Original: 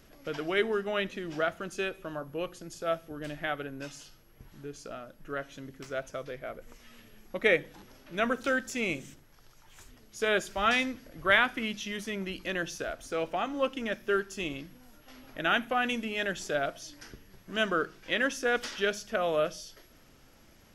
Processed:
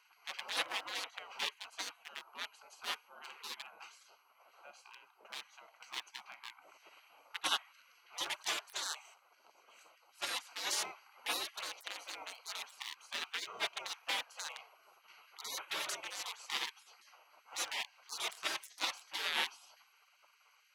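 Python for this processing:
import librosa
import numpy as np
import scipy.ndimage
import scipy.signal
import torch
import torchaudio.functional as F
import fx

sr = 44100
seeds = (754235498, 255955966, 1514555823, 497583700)

y = fx.wiener(x, sr, points=25)
y = fx.spec_gate(y, sr, threshold_db=-30, keep='weak')
y = scipy.signal.sosfilt(scipy.signal.butter(2, 460.0, 'highpass', fs=sr, output='sos'), y)
y = y * librosa.db_to_amplitude(14.0)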